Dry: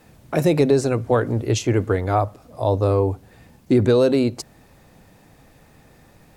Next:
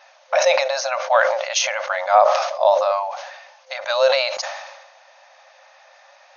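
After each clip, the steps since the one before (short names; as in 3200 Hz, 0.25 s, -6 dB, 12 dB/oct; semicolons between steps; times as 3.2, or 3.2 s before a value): FFT band-pass 520–6700 Hz; sustainer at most 49 dB/s; gain +7 dB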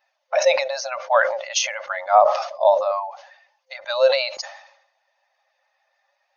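per-bin expansion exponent 1.5; low shelf 460 Hz +4 dB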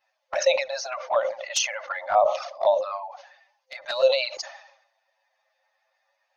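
dynamic EQ 830 Hz, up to -4 dB, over -29 dBFS, Q 1.4; envelope flanger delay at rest 9.4 ms, full sweep at -15.5 dBFS; de-hum 391.2 Hz, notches 2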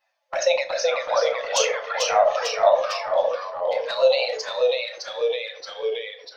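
reverb RT60 0.35 s, pre-delay 6 ms, DRR 5.5 dB; echoes that change speed 0.349 s, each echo -1 st, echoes 3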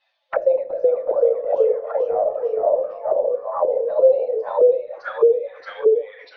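envelope low-pass 420–3700 Hz down, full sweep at -22 dBFS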